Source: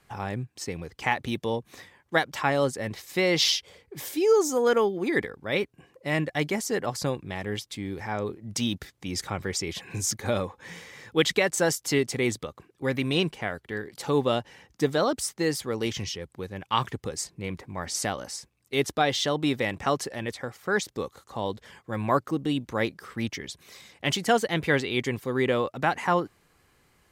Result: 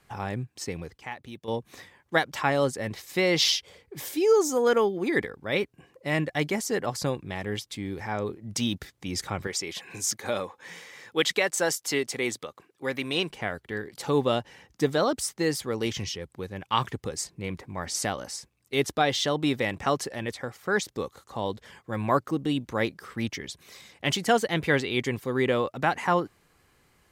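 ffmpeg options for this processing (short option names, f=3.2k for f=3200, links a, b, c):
-filter_complex "[0:a]asettb=1/sr,asplit=3[a][b][c];[a]atrim=end=9.474[d];[b]atrim=start=9.47:end=13.3,asetpts=PTS-STARTPTS,afade=t=in:d=0.004:c=qsin,afade=t=out:st=3.826:d=0.004:c=qsin,highpass=f=420:p=1[e];[c]atrim=start=13.296[f];[d][e]acrossfade=d=0.004:c1=hsin:c2=qsin[g];[g][f]acrossfade=d=0.004:c1=qsin:c2=hsin,asplit=3[h][i][j];[h]atrim=end=0.98,asetpts=PTS-STARTPTS,afade=t=out:st=0.72:d=0.26:c=log:silence=0.251189[k];[i]atrim=start=0.98:end=1.48,asetpts=PTS-STARTPTS,volume=-12dB[l];[j]atrim=start=1.48,asetpts=PTS-STARTPTS,afade=t=in:d=0.26:c=log:silence=0.251189[m];[k][l][m]concat=n=3:v=0:a=1"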